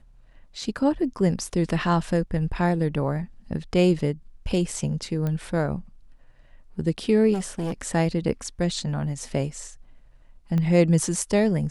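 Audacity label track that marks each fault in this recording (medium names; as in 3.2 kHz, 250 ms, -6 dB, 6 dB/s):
5.270000	5.270000	pop -17 dBFS
7.330000	7.740000	clipped -24 dBFS
10.580000	10.580000	pop -17 dBFS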